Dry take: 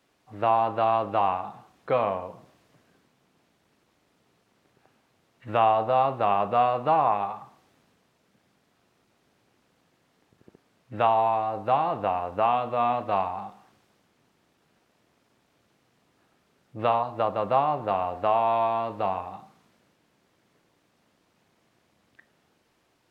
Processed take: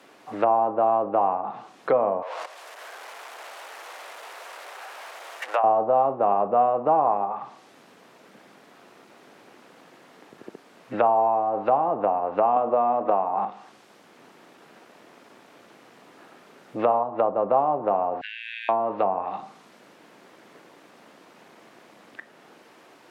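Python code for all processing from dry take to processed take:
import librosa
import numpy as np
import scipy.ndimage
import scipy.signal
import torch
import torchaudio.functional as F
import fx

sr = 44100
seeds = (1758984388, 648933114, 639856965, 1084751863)

y = fx.chain(x, sr, fx.zero_step(step_db=-34.0),
    fx.level_steps(step_db=13),
    fx.highpass(hz=560.0, slope=24), at=(2.22, 5.64))
y = fx.chain(y, sr, fx.highpass(hz=170.0, slope=6),
    fx.band_squash(depth_pct=100), at=(12.56, 13.45))
y = fx.chain(y, sr, fx.brickwall_highpass(low_hz=1500.0),
    fx.band_squash(depth_pct=40), at=(18.21, 18.69))
y = fx.env_lowpass_down(y, sr, base_hz=780.0, full_db=-23.5)
y = scipy.signal.sosfilt(scipy.signal.butter(2, 260.0, 'highpass', fs=sr, output='sos'), y)
y = fx.band_squash(y, sr, depth_pct=40)
y = y * librosa.db_to_amplitude(6.0)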